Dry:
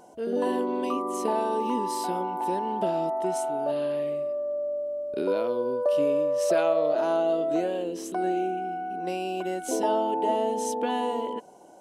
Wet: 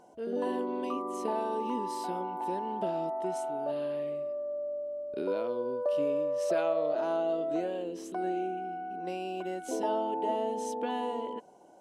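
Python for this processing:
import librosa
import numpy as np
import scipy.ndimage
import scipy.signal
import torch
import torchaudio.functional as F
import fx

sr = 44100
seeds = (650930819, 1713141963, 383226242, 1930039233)

y = fx.high_shelf(x, sr, hz=6800.0, db=-7.5)
y = y * 10.0 ** (-5.5 / 20.0)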